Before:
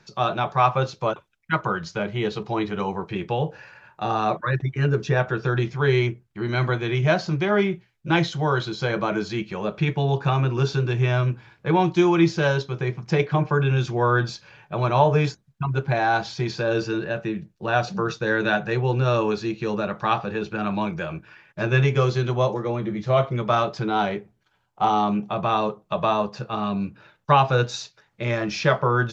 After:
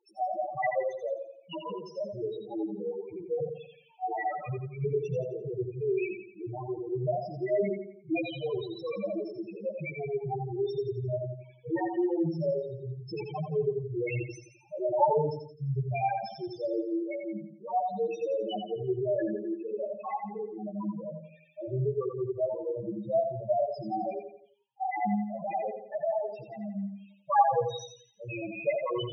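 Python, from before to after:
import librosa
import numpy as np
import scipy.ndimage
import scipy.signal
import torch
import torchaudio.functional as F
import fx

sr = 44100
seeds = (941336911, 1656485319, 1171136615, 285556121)

p1 = fx.lower_of_two(x, sr, delay_ms=0.33)
p2 = fx.highpass(p1, sr, hz=620.0, slope=6)
p3 = fx.level_steps(p2, sr, step_db=10)
p4 = p2 + F.gain(torch.from_numpy(p3), 2.0).numpy()
p5 = fx.chorus_voices(p4, sr, voices=4, hz=0.76, base_ms=17, depth_ms=2.4, mix_pct=45)
p6 = fx.spec_topn(p5, sr, count=2)
y = fx.echo_feedback(p6, sr, ms=86, feedback_pct=43, wet_db=-6.5)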